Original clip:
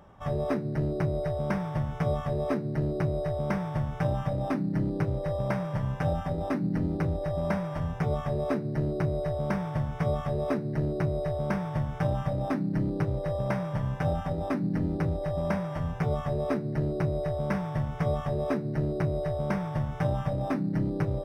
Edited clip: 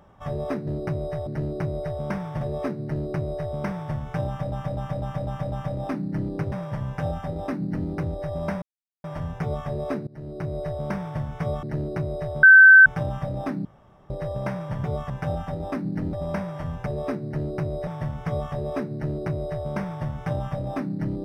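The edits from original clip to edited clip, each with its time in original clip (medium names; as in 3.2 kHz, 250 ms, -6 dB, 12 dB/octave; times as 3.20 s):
1.81–2.27 s: delete
2.80–3.40 s: copy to 0.67 s
4.13–4.38 s: loop, 6 plays
5.13–5.54 s: delete
7.64 s: insert silence 0.42 s
8.67–9.20 s: fade in, from -22 dB
10.23–10.67 s: delete
11.47–11.90 s: bleep 1.54 kHz -6.5 dBFS
12.69–13.14 s: room tone
14.91–15.29 s: delete
16.02–16.28 s: move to 13.88 s
17.29–17.61 s: delete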